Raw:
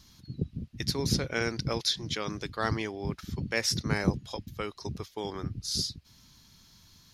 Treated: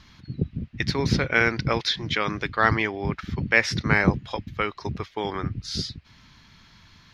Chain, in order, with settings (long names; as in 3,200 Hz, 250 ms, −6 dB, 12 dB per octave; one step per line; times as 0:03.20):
drawn EQ curve 460 Hz 0 dB, 2,100 Hz +8 dB, 11,000 Hz −20 dB
level +6 dB